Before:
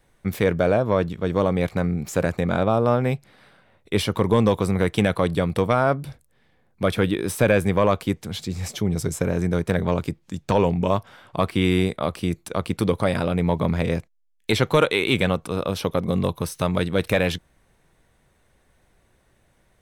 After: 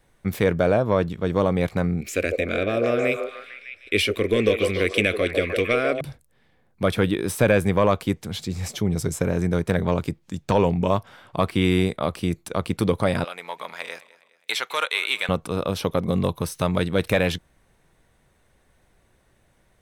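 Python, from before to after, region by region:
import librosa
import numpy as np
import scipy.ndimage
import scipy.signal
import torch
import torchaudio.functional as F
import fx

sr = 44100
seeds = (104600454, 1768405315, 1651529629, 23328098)

y = fx.chain(x, sr, fx.peak_eq(hz=2400.0, db=13.0, octaves=0.61),
    fx.fixed_phaser(hz=370.0, stages=4),
    fx.echo_stepped(ms=151, hz=550.0, octaves=0.7, feedback_pct=70, wet_db=-1), at=(2.01, 6.01))
y = fx.chain(y, sr, fx.highpass(hz=1100.0, slope=12),
    fx.echo_feedback(ms=207, feedback_pct=45, wet_db=-19.5), at=(13.24, 15.29))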